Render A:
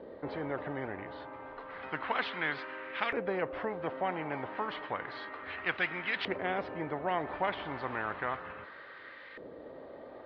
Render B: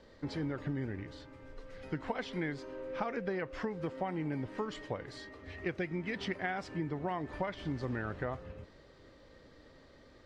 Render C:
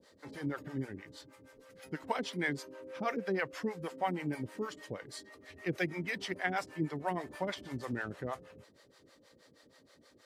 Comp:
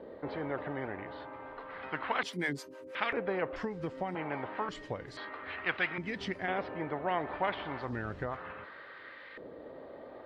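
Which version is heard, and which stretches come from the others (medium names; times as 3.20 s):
A
2.23–2.95 s: from C
3.56–4.15 s: from B
4.69–5.17 s: from B
5.98–6.48 s: from B
7.87–8.33 s: from B, crossfade 0.16 s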